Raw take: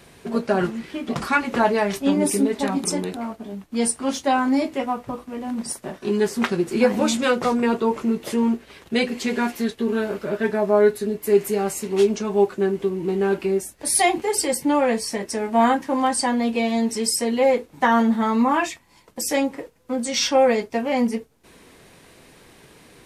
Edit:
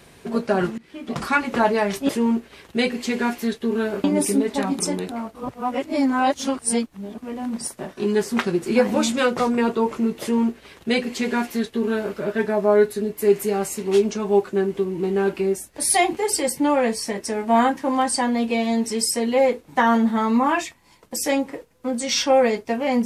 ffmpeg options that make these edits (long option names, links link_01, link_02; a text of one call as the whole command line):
ffmpeg -i in.wav -filter_complex "[0:a]asplit=6[link_01][link_02][link_03][link_04][link_05][link_06];[link_01]atrim=end=0.78,asetpts=PTS-STARTPTS,afade=type=out:start_time=0.776:duration=0.004:curve=hsin:silence=0.0794328[link_07];[link_02]atrim=start=0.78:end=2.092,asetpts=PTS-STARTPTS,afade=type=in:duration=0.45:silence=0.0794328[link_08];[link_03]atrim=start=8.258:end=10.212[link_09];[link_04]atrim=start=2.088:end=3.402[link_10];[link_05]atrim=start=3.398:end=5.232,asetpts=PTS-STARTPTS,areverse[link_11];[link_06]atrim=start=5.228[link_12];[link_07][link_08]concat=n=2:v=0:a=1[link_13];[link_13][link_09]acrossfade=duration=0.004:curve1=hsin:curve2=hsin[link_14];[link_14][link_10]acrossfade=duration=0.004:curve1=hsin:curve2=hsin[link_15];[link_15][link_11]acrossfade=duration=0.004:curve1=hsin:curve2=hsin[link_16];[link_16][link_12]acrossfade=duration=0.004:curve1=hsin:curve2=hsin" out.wav